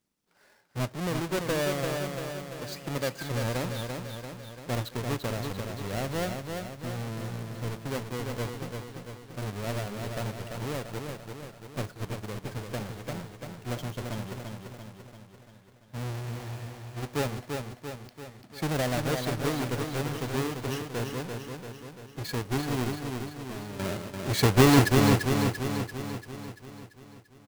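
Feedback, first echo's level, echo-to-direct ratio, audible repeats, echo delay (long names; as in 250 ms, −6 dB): 57%, −5.0 dB, −3.5 dB, 7, 341 ms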